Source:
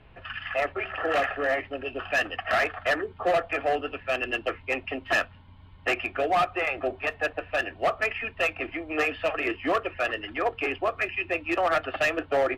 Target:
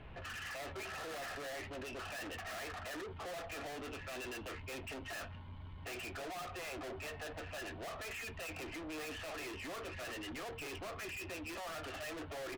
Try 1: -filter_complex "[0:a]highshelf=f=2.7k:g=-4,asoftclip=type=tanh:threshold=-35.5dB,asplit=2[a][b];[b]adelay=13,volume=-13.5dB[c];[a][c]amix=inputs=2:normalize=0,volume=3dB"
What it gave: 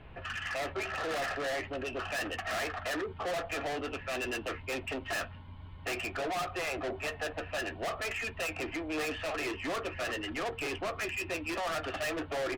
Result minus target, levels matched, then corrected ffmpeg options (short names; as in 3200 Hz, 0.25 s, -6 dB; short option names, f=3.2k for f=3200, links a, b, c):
soft clip: distortion -4 dB
-filter_complex "[0:a]highshelf=f=2.7k:g=-4,asoftclip=type=tanh:threshold=-46.5dB,asplit=2[a][b];[b]adelay=13,volume=-13.5dB[c];[a][c]amix=inputs=2:normalize=0,volume=3dB"